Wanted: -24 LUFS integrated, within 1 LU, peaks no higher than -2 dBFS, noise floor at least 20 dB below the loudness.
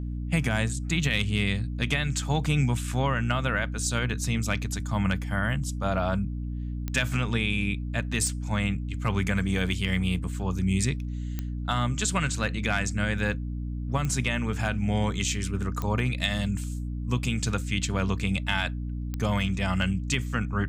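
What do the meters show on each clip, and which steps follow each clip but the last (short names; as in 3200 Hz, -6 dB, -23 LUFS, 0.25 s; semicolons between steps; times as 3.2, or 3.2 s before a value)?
clicks 6; hum 60 Hz; harmonics up to 300 Hz; hum level -29 dBFS; loudness -28.0 LUFS; peak -11.5 dBFS; loudness target -24.0 LUFS
-> de-click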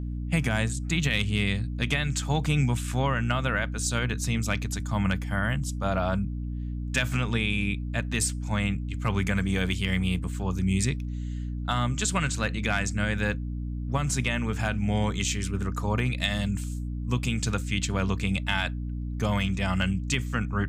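clicks 0; hum 60 Hz; harmonics up to 300 Hz; hum level -29 dBFS
-> notches 60/120/180/240/300 Hz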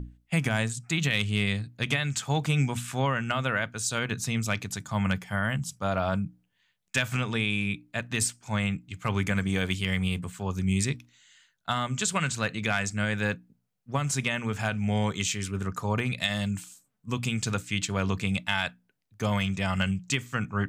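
hum none; loudness -29.0 LUFS; peak -12.5 dBFS; loudness target -24.0 LUFS
-> gain +5 dB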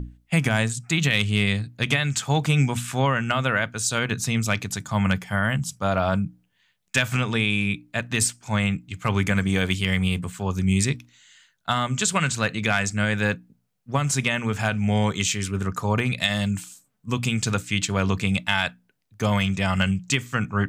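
loudness -24.0 LUFS; peak -7.5 dBFS; noise floor -69 dBFS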